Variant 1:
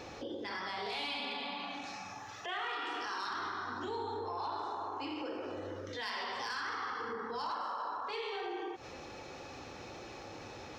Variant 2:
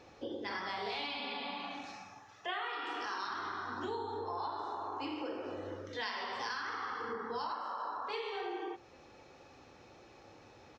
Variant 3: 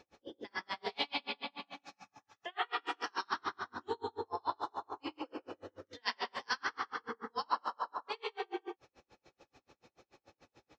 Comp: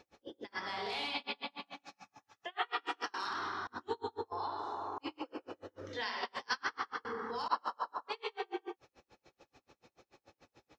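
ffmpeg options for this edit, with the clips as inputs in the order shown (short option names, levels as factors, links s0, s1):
-filter_complex "[0:a]asplit=3[s0][s1][s2];[1:a]asplit=2[s3][s4];[2:a]asplit=6[s5][s6][s7][s8][s9][s10];[s5]atrim=end=0.68[s11];[s0]atrim=start=0.52:end=1.23[s12];[s6]atrim=start=1.07:end=3.142[s13];[s1]atrim=start=3.138:end=3.672[s14];[s7]atrim=start=3.668:end=4.322[s15];[s3]atrim=start=4.318:end=4.982[s16];[s8]atrim=start=4.978:end=5.812[s17];[s4]atrim=start=5.808:end=6.232[s18];[s9]atrim=start=6.228:end=7.052[s19];[s2]atrim=start=7.048:end=7.482[s20];[s10]atrim=start=7.478[s21];[s11][s12]acrossfade=d=0.16:c1=tri:c2=tri[s22];[s22][s13]acrossfade=d=0.16:c1=tri:c2=tri[s23];[s23][s14]acrossfade=d=0.004:c1=hsin:c2=hsin[s24];[s24][s15]acrossfade=d=0.004:c1=hsin:c2=hsin[s25];[s25][s16]acrossfade=d=0.004:c1=hsin:c2=hsin[s26];[s26][s17]acrossfade=d=0.004:c1=hsin:c2=hsin[s27];[s27][s18]acrossfade=d=0.004:c1=hsin:c2=hsin[s28];[s28][s19]acrossfade=d=0.004:c1=hsin:c2=hsin[s29];[s29][s20]acrossfade=d=0.004:c1=hsin:c2=hsin[s30];[s30][s21]acrossfade=d=0.004:c1=hsin:c2=hsin"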